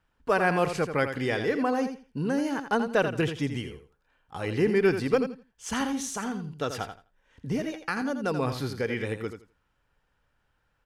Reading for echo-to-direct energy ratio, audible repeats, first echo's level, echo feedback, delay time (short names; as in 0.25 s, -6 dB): -9.0 dB, 2, -9.0 dB, 18%, 84 ms